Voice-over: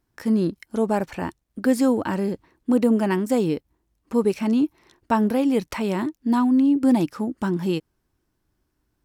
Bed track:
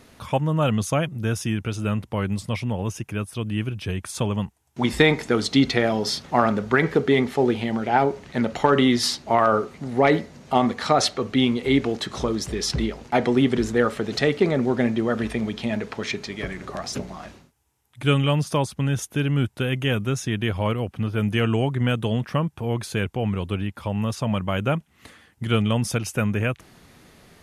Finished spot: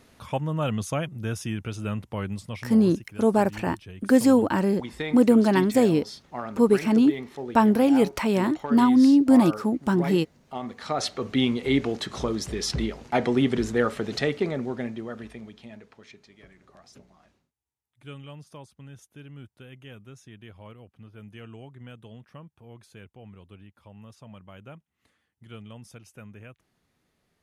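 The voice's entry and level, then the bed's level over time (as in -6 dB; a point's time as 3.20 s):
2.45 s, +1.5 dB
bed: 2.22 s -5.5 dB
3.12 s -15 dB
10.58 s -15 dB
11.30 s -3 dB
14.08 s -3 dB
16.06 s -22 dB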